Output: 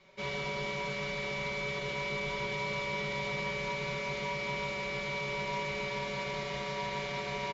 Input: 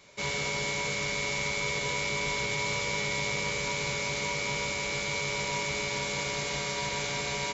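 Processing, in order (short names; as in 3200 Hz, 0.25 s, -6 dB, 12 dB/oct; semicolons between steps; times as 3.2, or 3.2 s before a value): air absorption 200 m; comb 5.3 ms, depth 74%; de-hum 49.03 Hz, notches 37; gain -4 dB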